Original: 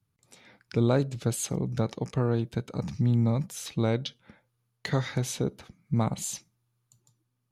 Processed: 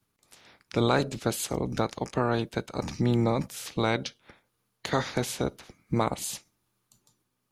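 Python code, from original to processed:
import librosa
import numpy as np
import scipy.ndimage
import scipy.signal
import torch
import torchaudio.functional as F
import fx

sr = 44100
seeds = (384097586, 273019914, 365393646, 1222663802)

y = fx.spec_clip(x, sr, under_db=16)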